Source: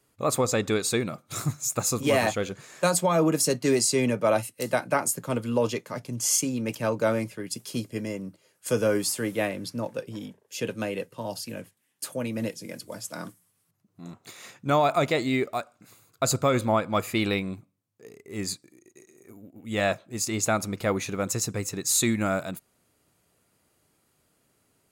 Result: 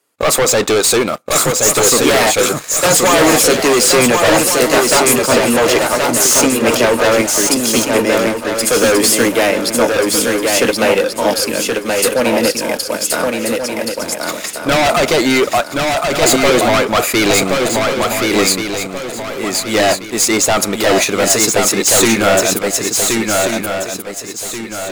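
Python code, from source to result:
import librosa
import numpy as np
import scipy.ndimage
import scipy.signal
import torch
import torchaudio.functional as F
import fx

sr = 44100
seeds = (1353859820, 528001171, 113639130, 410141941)

p1 = scipy.signal.sosfilt(scipy.signal.butter(2, 340.0, 'highpass', fs=sr, output='sos'), x)
p2 = fx.level_steps(p1, sr, step_db=11)
p3 = p1 + F.gain(torch.from_numpy(p2), 1.0).numpy()
p4 = fx.leveller(p3, sr, passes=3)
p5 = fx.fold_sine(p4, sr, drive_db=7, ceiling_db=-4.0)
p6 = p5 + fx.echo_swing(p5, sr, ms=1433, ratio=3, feedback_pct=35, wet_db=-3.5, dry=0)
y = F.gain(torch.from_numpy(p6), -5.0).numpy()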